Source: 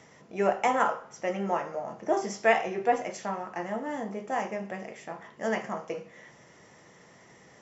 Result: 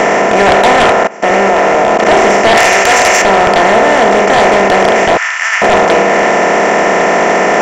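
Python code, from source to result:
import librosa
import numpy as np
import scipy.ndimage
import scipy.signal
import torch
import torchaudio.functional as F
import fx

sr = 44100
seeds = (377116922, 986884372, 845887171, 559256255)

y = fx.bin_compress(x, sr, power=0.2)
y = fx.level_steps(y, sr, step_db=21, at=(0.91, 2.05))
y = fx.tilt_eq(y, sr, slope=4.0, at=(2.57, 3.22))
y = fx.highpass(y, sr, hz=1400.0, slope=24, at=(5.17, 5.62))
y = fx.fold_sine(y, sr, drive_db=10, ceiling_db=-2.5)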